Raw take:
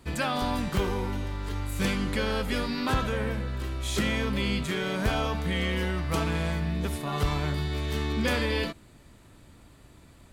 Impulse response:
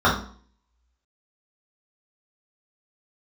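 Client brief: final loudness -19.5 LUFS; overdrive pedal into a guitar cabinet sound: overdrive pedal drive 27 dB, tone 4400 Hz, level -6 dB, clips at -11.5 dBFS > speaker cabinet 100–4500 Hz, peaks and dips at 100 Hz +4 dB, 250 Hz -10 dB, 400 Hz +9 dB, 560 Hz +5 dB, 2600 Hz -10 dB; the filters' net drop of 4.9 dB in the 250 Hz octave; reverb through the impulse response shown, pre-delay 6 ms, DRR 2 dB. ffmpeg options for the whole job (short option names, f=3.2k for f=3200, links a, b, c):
-filter_complex "[0:a]equalizer=f=250:t=o:g=-4.5,asplit=2[a][b];[1:a]atrim=start_sample=2205,adelay=6[c];[b][c]afir=irnorm=-1:irlink=0,volume=-23.5dB[d];[a][d]amix=inputs=2:normalize=0,asplit=2[e][f];[f]highpass=f=720:p=1,volume=27dB,asoftclip=type=tanh:threshold=-11.5dB[g];[e][g]amix=inputs=2:normalize=0,lowpass=f=4.4k:p=1,volume=-6dB,highpass=100,equalizer=f=100:t=q:w=4:g=4,equalizer=f=250:t=q:w=4:g=-10,equalizer=f=400:t=q:w=4:g=9,equalizer=f=560:t=q:w=4:g=5,equalizer=f=2.6k:t=q:w=4:g=-10,lowpass=f=4.5k:w=0.5412,lowpass=f=4.5k:w=1.3066,volume=-1dB"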